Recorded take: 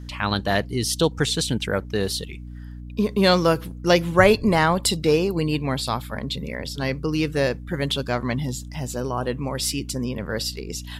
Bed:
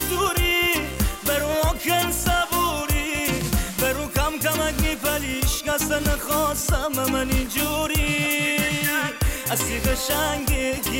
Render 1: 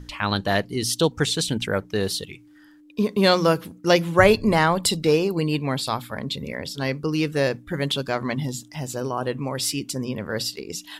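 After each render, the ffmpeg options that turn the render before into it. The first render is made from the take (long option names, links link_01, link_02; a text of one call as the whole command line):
ffmpeg -i in.wav -af "bandreject=frequency=60:width_type=h:width=6,bandreject=frequency=120:width_type=h:width=6,bandreject=frequency=180:width_type=h:width=6,bandreject=frequency=240:width_type=h:width=6" out.wav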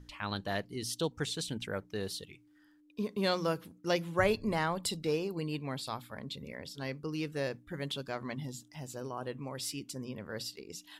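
ffmpeg -i in.wav -af "volume=-13dB" out.wav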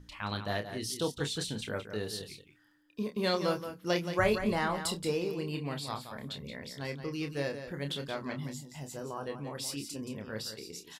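ffmpeg -i in.wav -filter_complex "[0:a]asplit=2[link_01][link_02];[link_02]adelay=28,volume=-7dB[link_03];[link_01][link_03]amix=inputs=2:normalize=0,aecho=1:1:175:0.335" out.wav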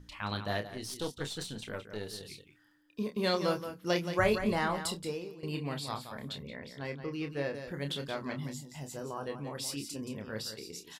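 ffmpeg -i in.wav -filter_complex "[0:a]asettb=1/sr,asplit=3[link_01][link_02][link_03];[link_01]atrim=end=0.674[link_04];[link_02]atrim=start=0.67:end=2.25,asetpts=PTS-STARTPTS,afade=type=in:duration=0.004:curve=qsin,afade=type=out:start_time=1.576:duration=0.004:curve=qsin,aeval=exprs='(tanh(15.8*val(0)+0.75)-tanh(0.75))/15.8':channel_layout=same[link_05];[link_03]atrim=start=2.246[link_06];[link_04][link_05]acrossfade=duration=0.004:curve1=hsin:curve2=qsin[link_07];[link_07][link_06]acrossfade=duration=0.004:curve1=qsin:curve2=hsin,asettb=1/sr,asplit=3[link_08][link_09][link_10];[link_08]atrim=end=6.434[link_11];[link_09]atrim=start=6.43:end=7.55,asetpts=PTS-STARTPTS,afade=type=in:duration=0.004:curve=qsin,afade=type=out:start_time=1.116:duration=0.004:curve=qsin,bass=frequency=250:gain=-2,treble=frequency=4000:gain=-11[link_12];[link_10]atrim=start=7.546[link_13];[link_11][link_12]acrossfade=duration=0.004:curve1=hsin:curve2=qsin[link_14];[link_14][link_13]acrossfade=duration=0.004:curve1=qsin:curve2=hsin,asplit=2[link_15][link_16];[link_15]atrim=end=5.43,asetpts=PTS-STARTPTS,afade=type=out:start_time=4.75:duration=0.68:silence=0.141254[link_17];[link_16]atrim=start=5.43,asetpts=PTS-STARTPTS,afade=type=in:duration=0.004:curve=hsin:silence=0.141254[link_18];[link_17][link_18]concat=n=2:v=0:a=1" out.wav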